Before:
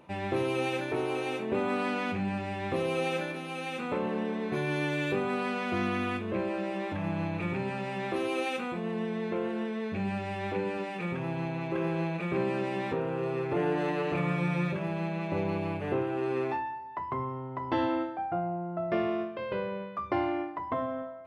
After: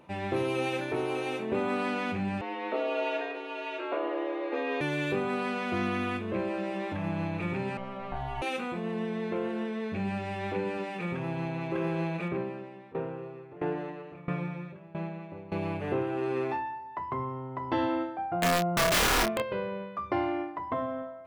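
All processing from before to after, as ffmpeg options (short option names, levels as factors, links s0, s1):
-filter_complex "[0:a]asettb=1/sr,asplit=3[s0][s1][s2];[s0]atrim=end=2.414[s3];[s1]atrim=start=2.41:end=4.81,asetpts=PTS-STARTPTS,afade=t=in:d=0.004:c=qsin,afade=t=out:st=2.396:d=0.004:c=qsin,highpass=150,lowpass=3300,afreqshift=120[s4];[s2]atrim=start=4.806[s5];[s3][s4]acrossfade=d=0.004:c1=hsin:c2=qsin[s6];[s6][s5]acrossfade=d=0.004:c1=qsin:c2=hsin,asettb=1/sr,asplit=3[s7][s8][s9];[s7]atrim=end=7.774[s10];[s8]atrim=start=7.77:end=8.42,asetpts=PTS-STARTPTS,afade=t=in:d=0.004:c=qsin,afade=t=out:st=0.646:d=0.004:c=qsin,lowpass=f=1200:p=1,aeval=exprs='val(0)*sin(2*PI*390*n/s)':c=same[s11];[s9]atrim=start=8.416[s12];[s10][s11]acrossfade=d=0.004:c1=hsin:c2=qsin[s13];[s13][s12]acrossfade=d=0.004:c1=qsin:c2=hsin,asettb=1/sr,asplit=3[s14][s15][s16];[s14]atrim=end=12.284[s17];[s15]atrim=start=12.28:end=15.52,asetpts=PTS-STARTPTS,afade=t=in:d=0.004:c=qsin,afade=t=out:st=3.236:d=0.004:c=qsin,lowpass=f=2000:p=1,aeval=exprs='val(0)*pow(10,-20*if(lt(mod(1.5*n/s,1),2*abs(1.5)/1000),1-mod(1.5*n/s,1)/(2*abs(1.5)/1000),(mod(1.5*n/s,1)-2*abs(1.5)/1000)/(1-2*abs(1.5)/1000))/20)':c=same[s18];[s16]atrim=start=15.516[s19];[s17][s18]acrossfade=d=0.004:c1=hsin:c2=qsin[s20];[s20][s19]acrossfade=d=0.004:c1=qsin:c2=hsin,asettb=1/sr,asplit=3[s21][s22][s23];[s21]atrim=end=18.424[s24];[s22]atrim=start=18.42:end=19.42,asetpts=PTS-STARTPTS,afade=t=in:d=0.004:c=qsin,afade=t=out:st=0.996:d=0.004:c=qsin,acontrast=77,aeval=exprs='(mod(10.6*val(0)+1,2)-1)/10.6':c=same,asplit=2[s25][s26];[s26]adelay=27,volume=0.562[s27];[s25][s27]amix=inputs=2:normalize=0,atrim=end_sample=44100[s28];[s23]atrim=start=19.416[s29];[s24][s28]acrossfade=d=0.004:c1=hsin:c2=qsin[s30];[s30][s29]acrossfade=d=0.004:c1=qsin:c2=hsin"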